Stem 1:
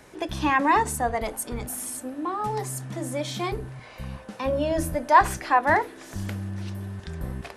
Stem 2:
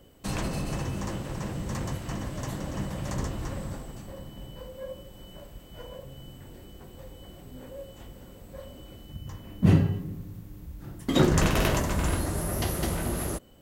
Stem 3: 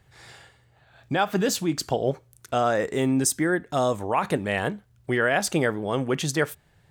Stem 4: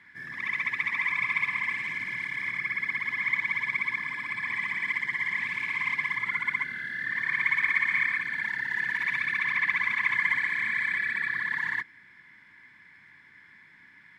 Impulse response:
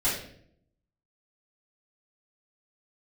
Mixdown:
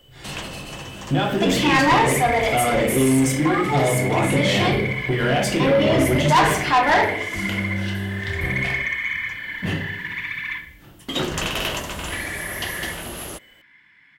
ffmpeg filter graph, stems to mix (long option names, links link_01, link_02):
-filter_complex "[0:a]agate=range=-33dB:threshold=-39dB:ratio=3:detection=peak,highpass=80,adelay=1200,volume=2dB,asplit=2[link_01][link_02];[link_02]volume=-7dB[link_03];[1:a]lowshelf=frequency=350:gain=-10,acontrast=82,volume=-5.5dB[link_04];[2:a]agate=range=-33dB:threshold=-53dB:ratio=3:detection=peak,lowshelf=frequency=490:gain=11,acompressor=threshold=-19dB:ratio=6,volume=-3dB,asplit=2[link_05][link_06];[link_06]volume=-6dB[link_07];[3:a]adelay=1100,volume=-4.5dB,asplit=3[link_08][link_09][link_10];[link_08]atrim=end=10.58,asetpts=PTS-STARTPTS,afade=type=out:start_time=10.576:duration=0.004:curve=hsin[link_11];[link_09]atrim=start=10.58:end=12.11,asetpts=PTS-STARTPTS,volume=0[link_12];[link_10]atrim=start=12.11,asetpts=PTS-STARTPTS,afade=type=in:duration=0.004:curve=hsin[link_13];[link_11][link_12][link_13]concat=n=3:v=0:a=1,asplit=2[link_14][link_15];[link_15]volume=-12.5dB[link_16];[4:a]atrim=start_sample=2205[link_17];[link_03][link_07][link_16]amix=inputs=3:normalize=0[link_18];[link_18][link_17]afir=irnorm=-1:irlink=0[link_19];[link_01][link_04][link_05][link_14][link_19]amix=inputs=5:normalize=0,equalizer=frequency=3000:width=2.6:gain=10,asoftclip=type=tanh:threshold=-11.5dB"